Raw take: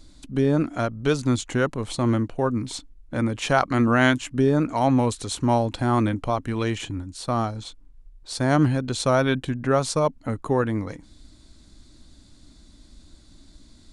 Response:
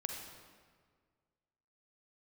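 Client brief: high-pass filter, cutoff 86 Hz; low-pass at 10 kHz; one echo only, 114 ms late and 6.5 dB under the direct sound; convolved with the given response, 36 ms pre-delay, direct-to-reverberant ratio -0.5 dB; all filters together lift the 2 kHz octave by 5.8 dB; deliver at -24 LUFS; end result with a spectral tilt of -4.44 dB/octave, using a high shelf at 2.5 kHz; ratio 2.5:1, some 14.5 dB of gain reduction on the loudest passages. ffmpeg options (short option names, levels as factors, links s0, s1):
-filter_complex "[0:a]highpass=86,lowpass=10000,equalizer=f=2000:t=o:g=5,highshelf=f=2500:g=7,acompressor=threshold=0.02:ratio=2.5,aecho=1:1:114:0.473,asplit=2[s0][s1];[1:a]atrim=start_sample=2205,adelay=36[s2];[s1][s2]afir=irnorm=-1:irlink=0,volume=1[s3];[s0][s3]amix=inputs=2:normalize=0,volume=1.78"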